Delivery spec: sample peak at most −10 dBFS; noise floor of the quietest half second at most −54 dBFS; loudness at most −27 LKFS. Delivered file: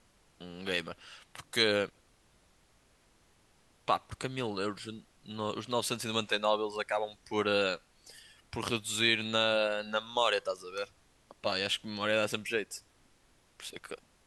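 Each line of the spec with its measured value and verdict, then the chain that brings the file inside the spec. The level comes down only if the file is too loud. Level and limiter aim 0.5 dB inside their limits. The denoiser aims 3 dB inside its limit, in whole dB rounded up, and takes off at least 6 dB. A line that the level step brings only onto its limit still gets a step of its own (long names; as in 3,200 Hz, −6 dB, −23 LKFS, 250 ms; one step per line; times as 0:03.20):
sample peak −12.5 dBFS: in spec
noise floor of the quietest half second −66 dBFS: in spec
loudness −32.0 LKFS: in spec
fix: no processing needed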